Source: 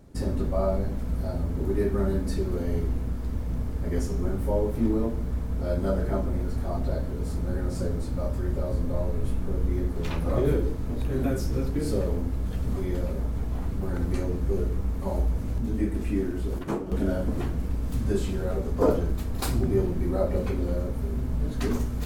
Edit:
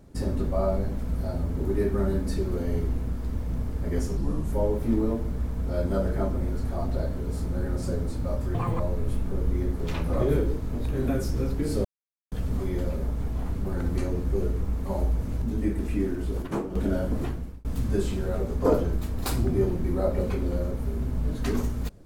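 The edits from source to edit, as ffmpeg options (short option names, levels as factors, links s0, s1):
-filter_complex "[0:a]asplit=8[s0][s1][s2][s3][s4][s5][s6][s7];[s0]atrim=end=4.174[s8];[s1]atrim=start=4.17:end=4.45,asetpts=PTS-STARTPTS,asetrate=34839,aresample=44100,atrim=end_sample=15630,asetpts=PTS-STARTPTS[s9];[s2]atrim=start=4.446:end=8.474[s10];[s3]atrim=start=8.47:end=8.96,asetpts=PTS-STARTPTS,asetrate=85554,aresample=44100[s11];[s4]atrim=start=8.956:end=12.01,asetpts=PTS-STARTPTS,afade=t=out:st=3.05:d=0.004:c=hsin[s12];[s5]atrim=start=12.01:end=12.48,asetpts=PTS-STARTPTS,volume=0[s13];[s6]atrim=start=12.48:end=17.81,asetpts=PTS-STARTPTS,afade=t=in:d=0.004:c=hsin,afade=t=out:st=4.9:d=0.43[s14];[s7]atrim=start=17.81,asetpts=PTS-STARTPTS,afade=t=in:d=0.004:c=hsin[s15];[s8][s9]acrossfade=d=0.004:c1=hsin:c2=hsin[s16];[s16][s10]acrossfade=d=0.004:c1=hsin:c2=hsin[s17];[s17][s11]acrossfade=d=0.004:c1=hsin:c2=hsin[s18];[s12][s13][s14][s15]concat=n=4:v=0:a=1[s19];[s18][s19]acrossfade=d=0.004:c1=hsin:c2=hsin"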